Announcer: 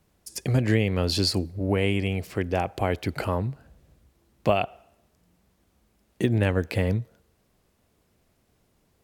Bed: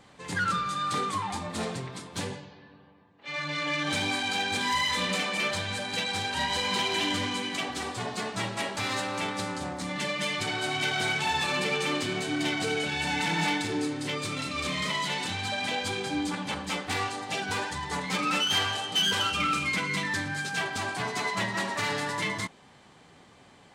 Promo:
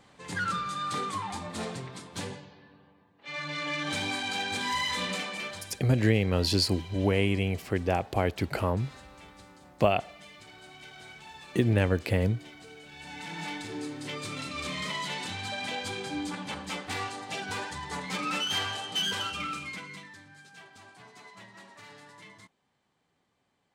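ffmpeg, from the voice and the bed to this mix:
-filter_complex "[0:a]adelay=5350,volume=-1.5dB[a];[1:a]volume=13dB,afade=t=out:st=5.03:d=0.79:silence=0.141254,afade=t=in:st=12.84:d=1.5:silence=0.158489,afade=t=out:st=18.99:d=1.16:silence=0.149624[b];[a][b]amix=inputs=2:normalize=0"

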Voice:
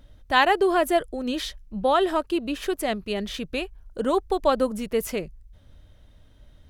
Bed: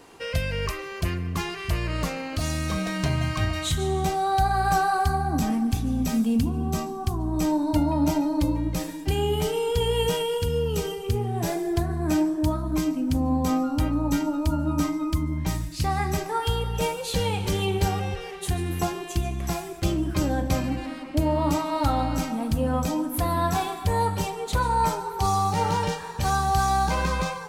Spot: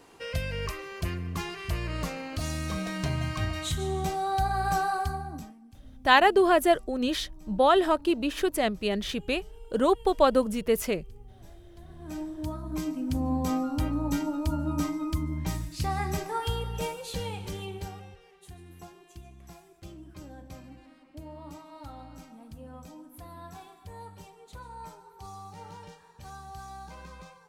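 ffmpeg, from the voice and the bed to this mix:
-filter_complex "[0:a]adelay=5750,volume=0dB[a];[1:a]volume=19dB,afade=t=out:st=4.9:d=0.64:silence=0.0668344,afade=t=in:st=11.76:d=1.49:silence=0.0630957,afade=t=out:st=16.35:d=1.83:silence=0.149624[b];[a][b]amix=inputs=2:normalize=0"

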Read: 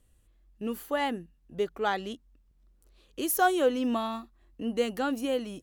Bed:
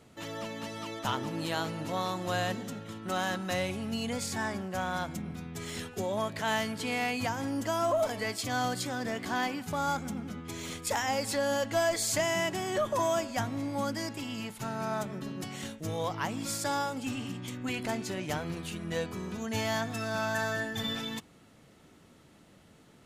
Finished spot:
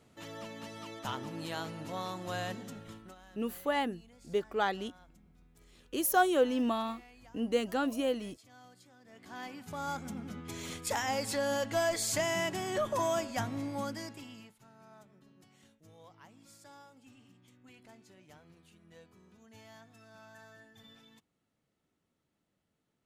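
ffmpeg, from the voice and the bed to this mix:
-filter_complex "[0:a]adelay=2750,volume=-2dB[a];[1:a]volume=17.5dB,afade=t=out:st=2.92:d=0.23:silence=0.1,afade=t=in:st=9.06:d=1.37:silence=0.0668344,afade=t=out:st=13.59:d=1:silence=0.0891251[b];[a][b]amix=inputs=2:normalize=0"

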